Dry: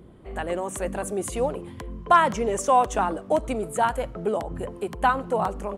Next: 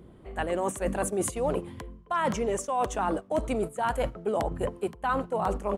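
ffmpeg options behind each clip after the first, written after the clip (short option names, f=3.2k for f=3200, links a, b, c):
-af "agate=range=-8dB:threshold=-31dB:ratio=16:detection=peak,areverse,acompressor=threshold=-30dB:ratio=16,areverse,volume=6dB"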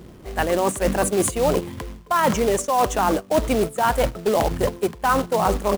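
-af "acrusher=bits=3:mode=log:mix=0:aa=0.000001,volume=8dB"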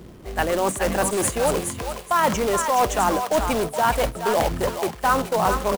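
-filter_complex "[0:a]acrossover=split=600[a][b];[a]asoftclip=type=hard:threshold=-22.5dB[c];[b]aecho=1:1:421|842|1263:0.531|0.117|0.0257[d];[c][d]amix=inputs=2:normalize=0"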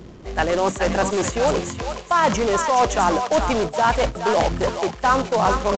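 -af "aresample=16000,aresample=44100,volume=2dB"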